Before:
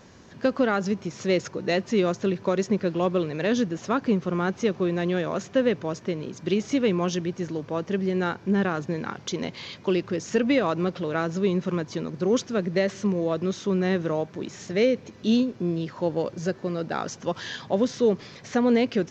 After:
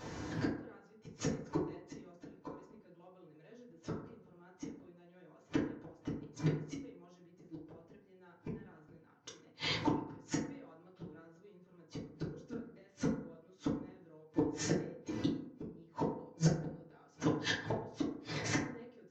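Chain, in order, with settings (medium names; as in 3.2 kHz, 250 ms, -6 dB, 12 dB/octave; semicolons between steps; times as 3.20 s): inverted gate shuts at -23 dBFS, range -40 dB; FDN reverb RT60 0.66 s, low-frequency decay 0.9×, high-frequency decay 0.4×, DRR -6.5 dB; trim -1.5 dB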